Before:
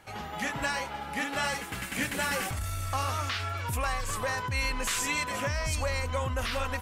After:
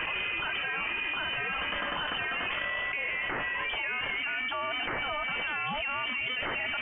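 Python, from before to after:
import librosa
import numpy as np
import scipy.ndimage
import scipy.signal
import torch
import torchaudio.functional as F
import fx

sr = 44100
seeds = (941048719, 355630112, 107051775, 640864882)

y = scipy.signal.sosfilt(scipy.signal.butter(4, 220.0, 'highpass', fs=sr, output='sos'), x)
y = fx.freq_invert(y, sr, carrier_hz=3300)
y = fx.env_flatten(y, sr, amount_pct=100)
y = F.gain(torch.from_numpy(y), -4.5).numpy()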